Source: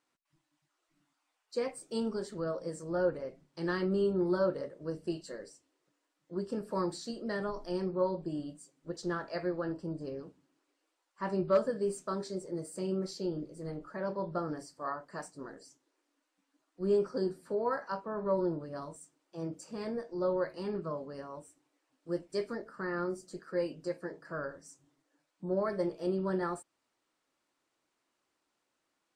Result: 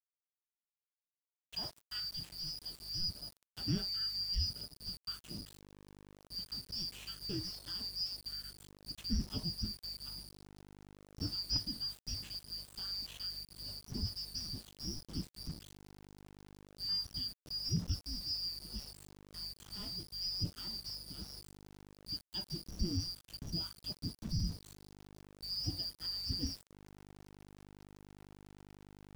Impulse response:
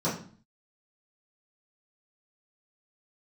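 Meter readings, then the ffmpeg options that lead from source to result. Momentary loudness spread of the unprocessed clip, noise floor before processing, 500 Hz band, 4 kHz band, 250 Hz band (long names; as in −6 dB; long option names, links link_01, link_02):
14 LU, −82 dBFS, −25.5 dB, +15.0 dB, −9.5 dB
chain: -filter_complex "[0:a]afftfilt=real='real(if(lt(b,272),68*(eq(floor(b/68),0)*1+eq(floor(b/68),1)*2+eq(floor(b/68),2)*3+eq(floor(b/68),3)*0)+mod(b,68),b),0)':imag='imag(if(lt(b,272),68*(eq(floor(b/68),0)*1+eq(floor(b/68),1)*2+eq(floor(b/68),2)*3+eq(floor(b/68),3)*0)+mod(b,68),b),0)':win_size=2048:overlap=0.75,aeval=exprs='val(0)+0.000355*(sin(2*PI*50*n/s)+sin(2*PI*2*50*n/s)/2+sin(2*PI*3*50*n/s)/3+sin(2*PI*4*50*n/s)/4+sin(2*PI*5*50*n/s)/5)':channel_layout=same,lowpass=frequency=1400:poles=1,lowshelf=frequency=95:gain=-10,asplit=2[link_01][link_02];[link_02]acompressor=threshold=-54dB:ratio=6,volume=3dB[link_03];[link_01][link_03]amix=inputs=2:normalize=0,asubboost=boost=9.5:cutoff=150,areverse,acompressor=mode=upward:threshold=-48dB:ratio=2.5,areverse,aeval=exprs='val(0)*gte(abs(val(0)),0.00447)':channel_layout=same"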